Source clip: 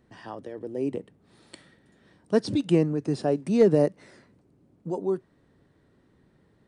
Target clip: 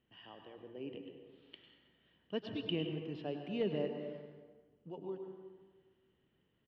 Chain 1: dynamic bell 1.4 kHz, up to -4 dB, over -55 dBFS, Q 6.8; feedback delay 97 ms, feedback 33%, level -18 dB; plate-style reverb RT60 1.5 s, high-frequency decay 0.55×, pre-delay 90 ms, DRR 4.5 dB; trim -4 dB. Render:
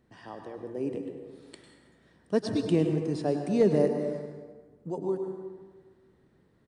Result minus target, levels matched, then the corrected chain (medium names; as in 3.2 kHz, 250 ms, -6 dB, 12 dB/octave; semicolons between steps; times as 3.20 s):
4 kHz band -12.5 dB
dynamic bell 1.4 kHz, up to -4 dB, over -55 dBFS, Q 6.8; four-pole ladder low-pass 3.1 kHz, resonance 85%; feedback delay 97 ms, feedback 33%, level -18 dB; plate-style reverb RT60 1.5 s, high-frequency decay 0.55×, pre-delay 90 ms, DRR 4.5 dB; trim -4 dB